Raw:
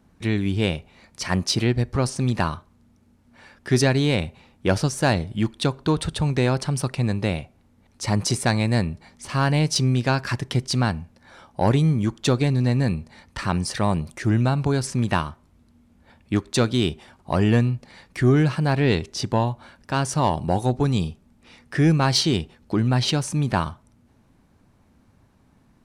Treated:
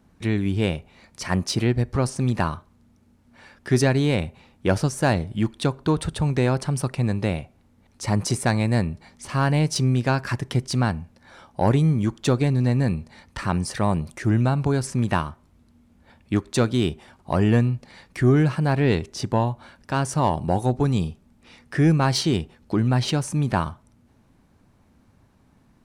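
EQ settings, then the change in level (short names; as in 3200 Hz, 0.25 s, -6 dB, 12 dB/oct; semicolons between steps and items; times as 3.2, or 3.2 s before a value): dynamic EQ 4100 Hz, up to -5 dB, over -42 dBFS, Q 0.86; 0.0 dB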